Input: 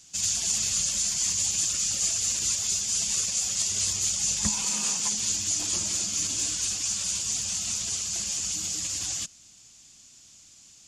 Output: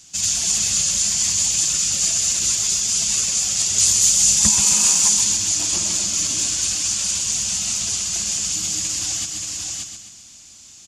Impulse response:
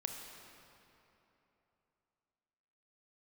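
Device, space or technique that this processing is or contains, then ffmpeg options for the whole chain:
ducked delay: -filter_complex "[0:a]asplit=3[s0][s1][s2];[s1]adelay=578,volume=0.631[s3];[s2]apad=whole_len=505008[s4];[s3][s4]sidechaincompress=threshold=0.01:ratio=8:attack=16:release=147[s5];[s0][s5]amix=inputs=2:normalize=0,asettb=1/sr,asplit=3[s6][s7][s8];[s6]atrim=end=3.784[s9];[s7]atrim=start=3.78:end=5.24,asetpts=PTS-STARTPTS,afade=t=in:d=0.004:c=qsin,afade=t=out:st=1.456:d=0.004:c=qsin,highshelf=f=7000:g=10[s10];[s8]atrim=start=5.236[s11];[s9][s10]acrossfade=d=0.004:c1=hsin:c2=qsin[s12];[s12][s11]acrossfade=d=0.004:c1=qsin:c2=hsin,bandreject=f=480:w=12,aecho=1:1:131|262|393|524|655|786:0.447|0.219|0.107|0.0526|0.0258|0.0126,volume=2"

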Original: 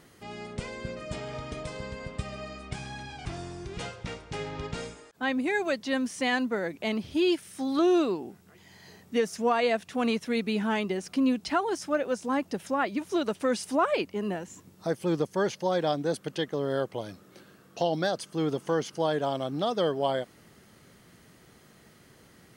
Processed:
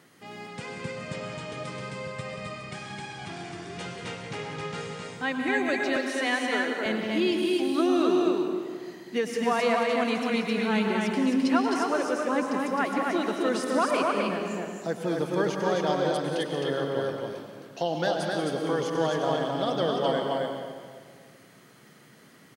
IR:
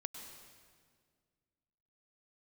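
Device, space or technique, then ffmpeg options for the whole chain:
stadium PA: -filter_complex "[0:a]highpass=f=120:w=0.5412,highpass=f=120:w=1.3066,equalizer=f=1800:t=o:w=1.6:g=3,aecho=1:1:183.7|262.4:0.282|0.708[s0];[1:a]atrim=start_sample=2205[s1];[s0][s1]afir=irnorm=-1:irlink=0,asettb=1/sr,asplit=3[s2][s3][s4];[s2]atrim=end=5.964[s5];[s3]atrim=start=5.96:end=6.86,asetpts=PTS-STARTPTS,afade=t=in:d=0.004:c=qsin,afade=t=out:st=0.896:d=0.004:c=qsin,highpass=f=270:w=0.5412,highpass=f=270:w=1.3066[s6];[s4]atrim=start=6.856[s7];[s5][s6]acrossfade=d=0.004:c1=hsin:c2=qsin[s8];[s8][s7]acrossfade=d=0.004:c1=qsin:c2=hsin,volume=1.19"

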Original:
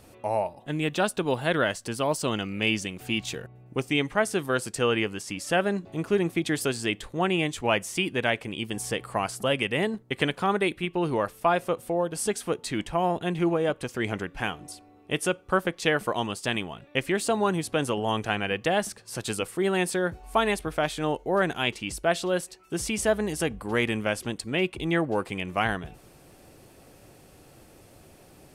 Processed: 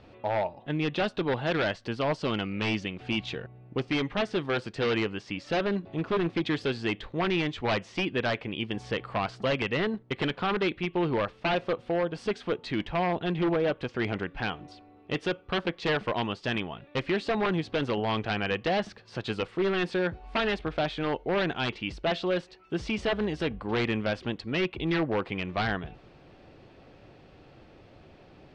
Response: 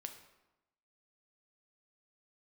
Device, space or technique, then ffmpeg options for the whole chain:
synthesiser wavefolder: -af "aeval=exprs='0.1*(abs(mod(val(0)/0.1+3,4)-2)-1)':c=same,lowpass=f=4100:w=0.5412,lowpass=f=4100:w=1.3066"

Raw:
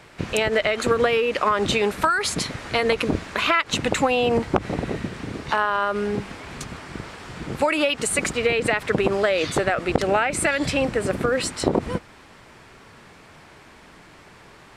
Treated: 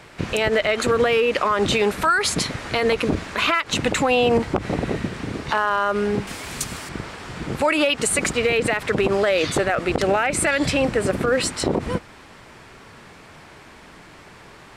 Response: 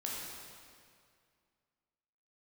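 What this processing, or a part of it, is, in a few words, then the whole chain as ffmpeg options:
limiter into clipper: -filter_complex "[0:a]asettb=1/sr,asplit=3[s0][s1][s2];[s0]atrim=end=6.274[s3];[s1]atrim=start=6.27:end=6.89,asetpts=PTS-STARTPTS,afade=t=in:d=0.004:c=qsin,afade=t=out:st=0.616:d=0.004:c=qsin,aemphasis=mode=production:type=75fm[s4];[s2]atrim=start=6.886[s5];[s3][s4]acrossfade=d=0.004:c1=hsin:c2=qsin[s6];[s6][s5]acrossfade=d=0.004:c1=qsin:c2=hsin,alimiter=limit=0.237:level=0:latency=1:release=27,asoftclip=type=hard:threshold=0.211,volume=1.41"

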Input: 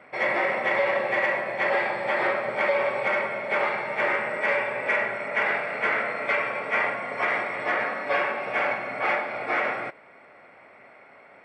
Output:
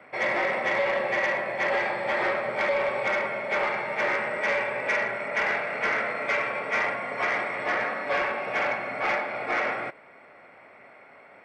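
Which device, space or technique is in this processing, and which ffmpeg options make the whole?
one-band saturation: -filter_complex "[0:a]acrossover=split=260|3300[s0][s1][s2];[s1]asoftclip=type=tanh:threshold=0.119[s3];[s0][s3][s2]amix=inputs=3:normalize=0"

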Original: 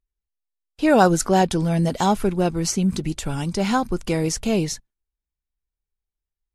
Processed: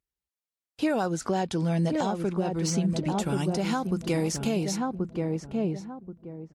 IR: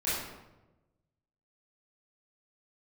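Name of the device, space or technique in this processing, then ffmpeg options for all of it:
podcast mastering chain: -filter_complex "[0:a]asplit=3[s0][s1][s2];[s0]afade=t=out:st=1.05:d=0.02[s3];[s1]lowpass=7900,afade=t=in:st=1.05:d=0.02,afade=t=out:st=3.18:d=0.02[s4];[s2]afade=t=in:st=3.18:d=0.02[s5];[s3][s4][s5]amix=inputs=3:normalize=0,highpass=89,asplit=2[s6][s7];[s7]adelay=1080,lowpass=f=810:p=1,volume=0.562,asplit=2[s8][s9];[s9]adelay=1080,lowpass=f=810:p=1,volume=0.28,asplit=2[s10][s11];[s11]adelay=1080,lowpass=f=810:p=1,volume=0.28,asplit=2[s12][s13];[s13]adelay=1080,lowpass=f=810:p=1,volume=0.28[s14];[s6][s8][s10][s12][s14]amix=inputs=5:normalize=0,deesser=0.45,acompressor=threshold=0.0794:ratio=2,alimiter=limit=0.15:level=0:latency=1:release=424" -ar 48000 -c:a libmp3lame -b:a 128k

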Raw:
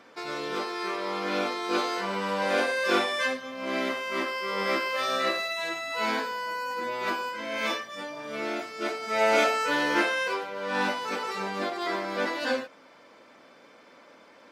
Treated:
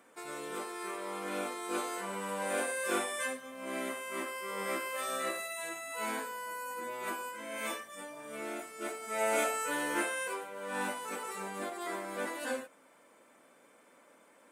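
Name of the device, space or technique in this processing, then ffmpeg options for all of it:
budget condenser microphone: -af "highpass=120,highshelf=f=6700:t=q:w=3:g=11.5,volume=0.398"

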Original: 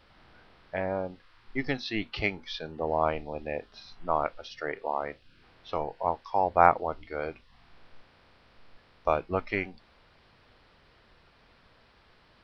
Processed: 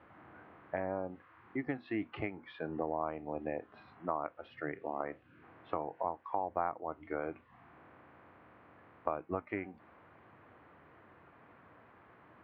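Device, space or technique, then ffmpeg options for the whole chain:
bass amplifier: -filter_complex "[0:a]asettb=1/sr,asplit=3[s0][s1][s2];[s0]atrim=end=4.584[s3];[s1]atrim=start=4.58:end=5,asetpts=PTS-STARTPTS,afade=t=in:d=0.004:c=qsin,afade=t=out:st=0.416:d=0.004:c=qsin,equalizer=f=125:t=o:w=1:g=6,equalizer=f=500:t=o:w=1:g=-5,equalizer=f=1000:t=o:w=1:g=-12[s4];[s2]atrim=start=4.996[s5];[s3][s4]acrossfade=d=0.004:c1=hsin:c2=qsin[s6];[s6][s5]acrossfade=d=0.004:c1=qsin:c2=hsin,acompressor=threshold=0.0158:ratio=5,highpass=f=85:w=0.5412,highpass=f=85:w=1.3066,equalizer=f=310:t=q:w=4:g=7,equalizer=f=720:t=q:w=4:g=3,equalizer=f=1100:t=q:w=4:g=4,lowpass=f=2100:w=0.5412,lowpass=f=2100:w=1.3066,volume=1.12"

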